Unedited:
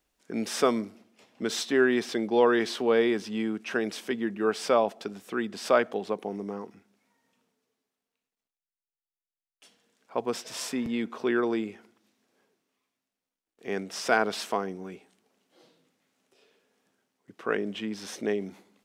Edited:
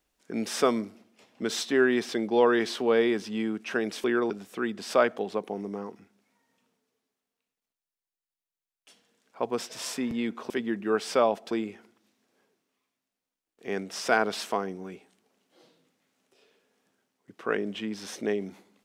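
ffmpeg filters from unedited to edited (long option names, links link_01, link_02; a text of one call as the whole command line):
ffmpeg -i in.wav -filter_complex "[0:a]asplit=5[link_01][link_02][link_03][link_04][link_05];[link_01]atrim=end=4.042[link_06];[link_02]atrim=start=11.248:end=11.512[link_07];[link_03]atrim=start=5.048:end=11.252[link_08];[link_04]atrim=start=4.038:end=5.052[link_09];[link_05]atrim=start=11.508[link_10];[link_06][link_07]acrossfade=duration=0.004:curve1=hsin:curve2=hsin[link_11];[link_11][link_08]acrossfade=duration=0.004:curve1=hsin:curve2=hsin[link_12];[link_12][link_09]acrossfade=duration=0.004:curve1=hsin:curve2=hsin[link_13];[link_13][link_10]acrossfade=duration=0.004:curve1=hsin:curve2=hsin" out.wav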